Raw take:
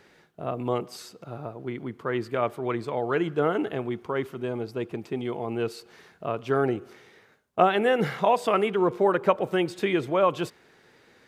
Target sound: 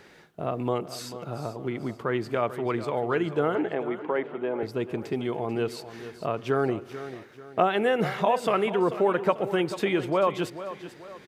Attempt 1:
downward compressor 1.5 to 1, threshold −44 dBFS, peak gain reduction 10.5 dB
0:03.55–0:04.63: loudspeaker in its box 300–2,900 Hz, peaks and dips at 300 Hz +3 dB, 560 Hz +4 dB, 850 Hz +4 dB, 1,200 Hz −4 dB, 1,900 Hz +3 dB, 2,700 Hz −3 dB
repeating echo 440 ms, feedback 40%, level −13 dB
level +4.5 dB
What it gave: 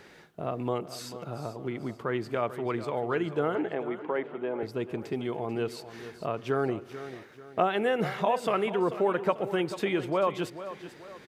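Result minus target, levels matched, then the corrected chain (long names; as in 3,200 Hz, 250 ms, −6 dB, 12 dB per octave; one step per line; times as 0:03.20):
downward compressor: peak gain reduction +3 dB
downward compressor 1.5 to 1, threshold −35 dBFS, peak gain reduction 7.5 dB
0:03.55–0:04.63: loudspeaker in its box 300–2,900 Hz, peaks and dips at 300 Hz +3 dB, 560 Hz +4 dB, 850 Hz +4 dB, 1,200 Hz −4 dB, 1,900 Hz +3 dB, 2,700 Hz −3 dB
repeating echo 440 ms, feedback 40%, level −13 dB
level +4.5 dB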